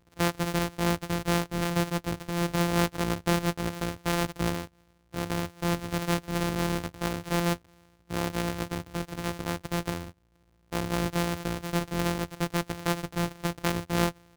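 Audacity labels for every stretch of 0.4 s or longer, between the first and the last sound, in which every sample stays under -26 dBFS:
4.620000	5.160000	silence
7.540000	8.130000	silence
9.970000	10.730000	silence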